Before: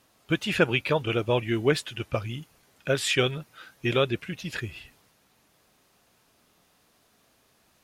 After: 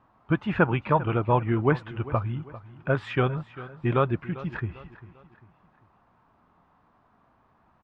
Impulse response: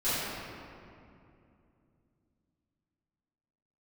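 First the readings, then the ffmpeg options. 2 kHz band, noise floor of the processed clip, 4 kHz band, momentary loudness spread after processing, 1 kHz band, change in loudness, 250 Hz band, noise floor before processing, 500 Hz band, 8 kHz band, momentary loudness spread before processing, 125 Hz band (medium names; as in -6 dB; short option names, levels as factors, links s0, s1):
-3.0 dB, -64 dBFS, -14.5 dB, 12 LU, +6.5 dB, +0.5 dB, +2.0 dB, -65 dBFS, -1.0 dB, under -25 dB, 15 LU, +5.0 dB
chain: -af "lowpass=f=1000:t=q:w=2.1,equalizer=f=490:w=0.97:g=-9.5,aecho=1:1:397|794|1191:0.141|0.0565|0.0226,volume=1.88"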